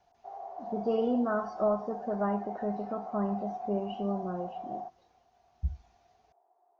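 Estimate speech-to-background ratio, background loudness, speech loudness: 9.0 dB, -42.0 LUFS, -33.0 LUFS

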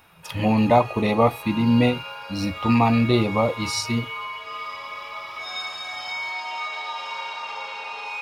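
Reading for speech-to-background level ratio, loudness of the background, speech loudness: 10.0 dB, -31.5 LUFS, -21.5 LUFS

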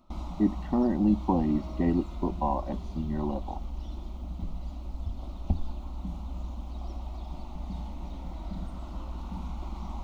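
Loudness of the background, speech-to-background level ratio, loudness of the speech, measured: -39.5 LUFS, 10.0 dB, -29.5 LUFS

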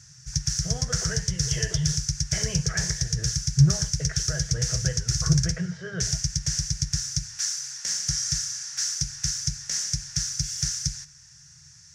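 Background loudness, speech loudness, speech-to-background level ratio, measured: -26.5 LUFS, -29.5 LUFS, -3.0 dB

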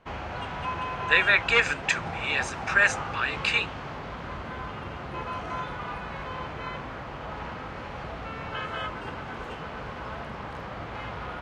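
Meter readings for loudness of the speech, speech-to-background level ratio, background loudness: -24.0 LUFS, 11.0 dB, -35.0 LUFS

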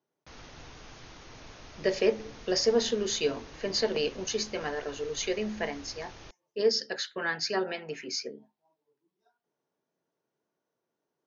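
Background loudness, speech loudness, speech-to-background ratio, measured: -49.0 LUFS, -30.5 LUFS, 18.5 dB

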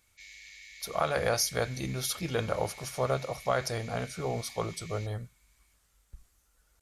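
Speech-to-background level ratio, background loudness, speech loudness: 15.5 dB, -48.0 LUFS, -32.5 LUFS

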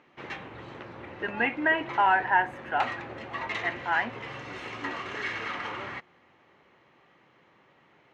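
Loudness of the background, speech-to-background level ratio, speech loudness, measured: -37.0 LUFS, 10.0 dB, -27.0 LUFS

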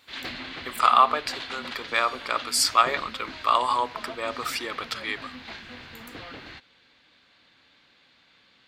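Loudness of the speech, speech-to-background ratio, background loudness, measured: -24.5 LUFS, 14.0 dB, -38.5 LUFS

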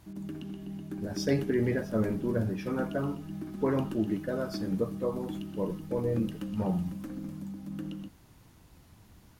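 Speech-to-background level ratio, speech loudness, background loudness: 7.5 dB, -32.5 LUFS, -40.0 LUFS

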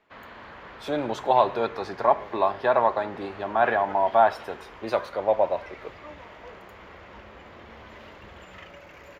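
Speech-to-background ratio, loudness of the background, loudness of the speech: 19.5 dB, -44.0 LUFS, -24.5 LUFS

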